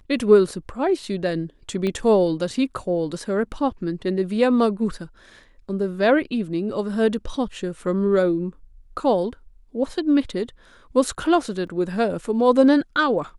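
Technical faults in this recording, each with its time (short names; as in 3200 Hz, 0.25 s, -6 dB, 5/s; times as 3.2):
1.87 pop -15 dBFS
11.67 gap 3.7 ms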